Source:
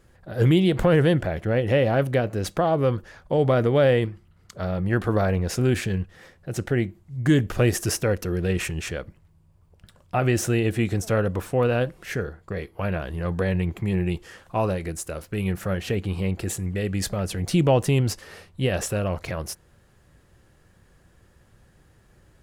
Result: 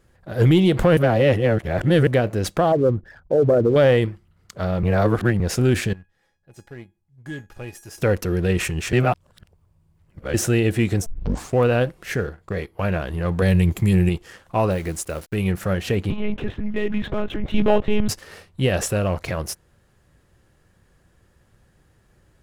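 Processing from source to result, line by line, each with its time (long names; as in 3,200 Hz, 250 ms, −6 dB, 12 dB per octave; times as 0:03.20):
0:00.97–0:02.07: reverse
0:02.72–0:03.76: spectral envelope exaggerated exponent 2
0:04.83–0:05.40: reverse
0:05.93–0:07.98: tuned comb filter 830 Hz, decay 0.3 s, mix 90%
0:08.93–0:10.34: reverse
0:11.06: tape start 0.51 s
0:13.42–0:14.09: bass and treble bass +5 dB, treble +13 dB
0:14.71–0:15.35: hold until the input has moved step −46.5 dBFS
0:16.10–0:18.09: one-pitch LPC vocoder at 8 kHz 210 Hz
whole clip: leveller curve on the samples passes 1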